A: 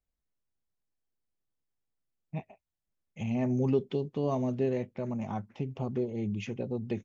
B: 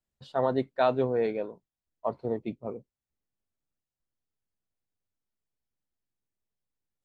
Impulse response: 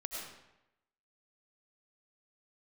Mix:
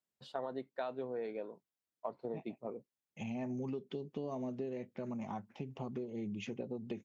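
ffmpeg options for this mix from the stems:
-filter_complex "[0:a]agate=range=-33dB:threshold=-58dB:ratio=3:detection=peak,aphaser=in_gain=1:out_gain=1:delay=1.3:decay=0.22:speed=0.45:type=triangular,volume=-3dB[link_01];[1:a]volume=-3dB[link_02];[link_01][link_02]amix=inputs=2:normalize=0,highpass=180,acompressor=threshold=-37dB:ratio=6"

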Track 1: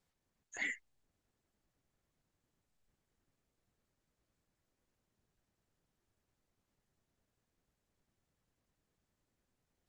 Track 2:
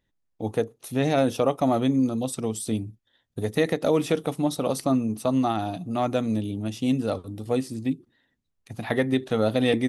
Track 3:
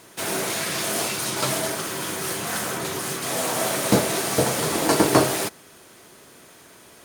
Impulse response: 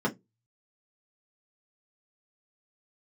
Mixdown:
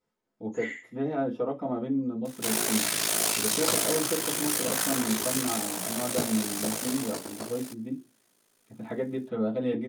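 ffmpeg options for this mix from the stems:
-filter_complex "[0:a]bass=frequency=250:gain=-15,treble=frequency=4000:gain=-2,asplit=2[link_01][link_02];[link_02]adelay=11.3,afreqshift=3[link_03];[link_01][link_03]amix=inputs=2:normalize=1,volume=0dB,asplit=4[link_04][link_05][link_06][link_07];[link_05]volume=-3dB[link_08];[link_06]volume=-4dB[link_09];[1:a]bass=frequency=250:gain=-7,treble=frequency=4000:gain=-9,volume=-16.5dB,asplit=3[link_10][link_11][link_12];[link_11]volume=-3.5dB[link_13];[link_12]volume=-21dB[link_14];[2:a]highpass=140,highshelf=frequency=3000:gain=8,aeval=exprs='val(0)*sin(2*PI*27*n/s)':channel_layout=same,adelay=2250,volume=-3dB,afade=type=out:start_time=5.41:duration=0.26:silence=0.446684,afade=type=out:start_time=6.89:duration=0.33:silence=0.281838[link_15];[link_07]apad=whole_len=435876[link_16];[link_10][link_16]sidechaincompress=threshold=-57dB:ratio=8:attack=16:release=1230[link_17];[3:a]atrim=start_sample=2205[link_18];[link_08][link_13]amix=inputs=2:normalize=0[link_19];[link_19][link_18]afir=irnorm=-1:irlink=0[link_20];[link_09][link_14]amix=inputs=2:normalize=0,aecho=0:1:70|140|210|280|350:1|0.32|0.102|0.0328|0.0105[link_21];[link_04][link_17][link_15][link_20][link_21]amix=inputs=5:normalize=0"

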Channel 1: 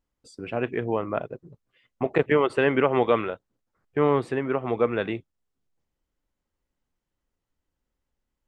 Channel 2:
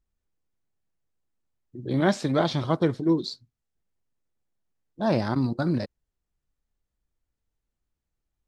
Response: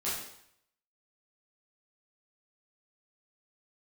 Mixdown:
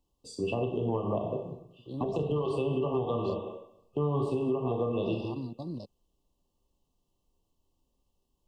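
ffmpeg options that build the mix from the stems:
-filter_complex "[0:a]volume=0dB,asplit=2[link_01][link_02];[link_02]volume=-3.5dB[link_03];[1:a]agate=range=-29dB:threshold=-36dB:ratio=16:detection=peak,volume=-13dB[link_04];[2:a]atrim=start_sample=2205[link_05];[link_03][link_05]afir=irnorm=-1:irlink=0[link_06];[link_01][link_04][link_06]amix=inputs=3:normalize=0,afftfilt=real='re*(1-between(b*sr/4096,1200,2600))':imag='im*(1-between(b*sr/4096,1200,2600))':win_size=4096:overlap=0.75,acrossover=split=150[link_07][link_08];[link_08]acompressor=threshold=-27dB:ratio=6[link_09];[link_07][link_09]amix=inputs=2:normalize=0,alimiter=limit=-20.5dB:level=0:latency=1:release=127"

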